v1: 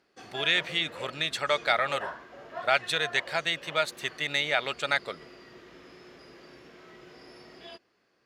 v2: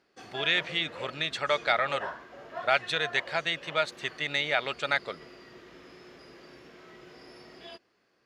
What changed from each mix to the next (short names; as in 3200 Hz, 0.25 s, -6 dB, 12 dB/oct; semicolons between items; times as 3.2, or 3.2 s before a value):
speech: add air absorption 70 m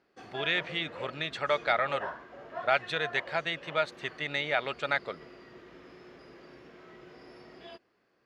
master: add high shelf 3700 Hz -10.5 dB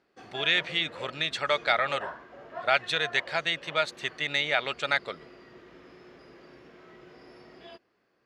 speech: add high shelf 2900 Hz +11.5 dB